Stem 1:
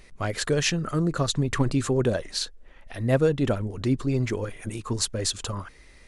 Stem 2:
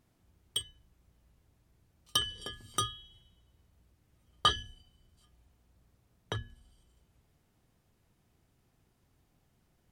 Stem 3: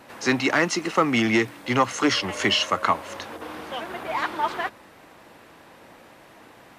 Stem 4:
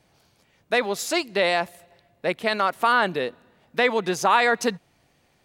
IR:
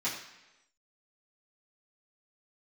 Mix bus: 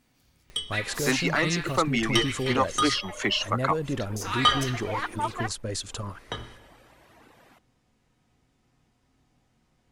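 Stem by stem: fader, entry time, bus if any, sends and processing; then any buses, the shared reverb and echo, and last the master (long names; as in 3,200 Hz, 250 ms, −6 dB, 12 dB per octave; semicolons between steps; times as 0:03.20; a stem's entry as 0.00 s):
−3.0 dB, 0.50 s, no send, brickwall limiter −18.5 dBFS, peak gain reduction 9.5 dB; upward compression, threshold −44 dBFS
+0.5 dB, 0.00 s, send −5.5 dB, low-pass filter 8,200 Hz 12 dB per octave
−4.0 dB, 0.80 s, no send, reverb reduction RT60 1.1 s
−10.0 dB, 0.00 s, muted 0:02.52–0:04.16, send −7 dB, high-pass filter 1,300 Hz 24 dB per octave; high-shelf EQ 11,000 Hz +11 dB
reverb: on, RT60 1.0 s, pre-delay 3 ms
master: no processing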